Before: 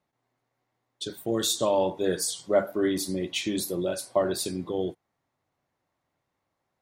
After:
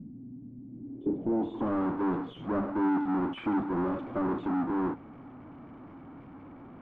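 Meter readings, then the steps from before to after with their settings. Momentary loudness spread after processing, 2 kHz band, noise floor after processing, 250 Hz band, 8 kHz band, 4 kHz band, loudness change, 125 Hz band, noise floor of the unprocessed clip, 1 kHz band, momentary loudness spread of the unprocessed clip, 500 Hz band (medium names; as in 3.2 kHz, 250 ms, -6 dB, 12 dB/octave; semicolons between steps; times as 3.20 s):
20 LU, -4.0 dB, -49 dBFS, +3.0 dB, under -40 dB, under -20 dB, -3.0 dB, -0.5 dB, -81 dBFS, +1.0 dB, 7 LU, -8.5 dB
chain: cascade formant filter i; power-law waveshaper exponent 0.35; low-pass sweep 210 Hz -> 1.2 kHz, 0.67–1.73 s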